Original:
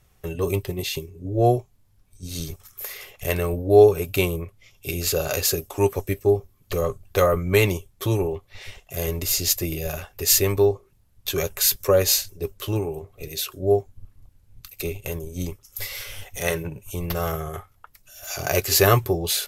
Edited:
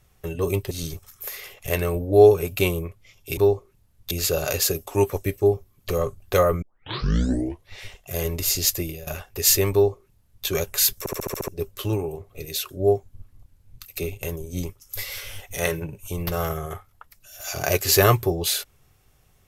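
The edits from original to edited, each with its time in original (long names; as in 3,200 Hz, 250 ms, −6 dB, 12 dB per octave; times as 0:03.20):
0:00.71–0:02.28: remove
0:07.45: tape start 1.06 s
0:09.60–0:09.90: fade out, to −16.5 dB
0:10.55–0:11.29: duplicate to 0:04.94
0:11.82: stutter in place 0.07 s, 7 plays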